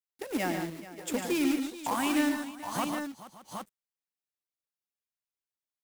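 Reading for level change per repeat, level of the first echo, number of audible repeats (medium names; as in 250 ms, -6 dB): no regular repeats, -9.5 dB, 5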